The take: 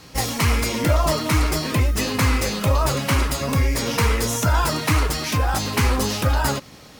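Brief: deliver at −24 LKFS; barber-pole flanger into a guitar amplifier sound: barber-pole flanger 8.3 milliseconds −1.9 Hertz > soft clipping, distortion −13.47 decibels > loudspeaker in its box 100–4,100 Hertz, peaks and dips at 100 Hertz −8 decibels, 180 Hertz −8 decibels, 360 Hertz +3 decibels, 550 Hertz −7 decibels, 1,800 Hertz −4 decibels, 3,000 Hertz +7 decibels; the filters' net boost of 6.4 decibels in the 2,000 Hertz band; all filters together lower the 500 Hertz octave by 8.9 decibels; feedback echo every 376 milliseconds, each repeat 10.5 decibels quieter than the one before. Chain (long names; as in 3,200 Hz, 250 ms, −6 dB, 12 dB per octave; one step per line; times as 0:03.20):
parametric band 500 Hz −9 dB
parametric band 2,000 Hz +9 dB
repeating echo 376 ms, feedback 30%, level −10.5 dB
barber-pole flanger 8.3 ms −1.9 Hz
soft clipping −18 dBFS
loudspeaker in its box 100–4,100 Hz, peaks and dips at 100 Hz −8 dB, 180 Hz −8 dB, 360 Hz +3 dB, 550 Hz −7 dB, 1,800 Hz −4 dB, 3,000 Hz +7 dB
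level +2 dB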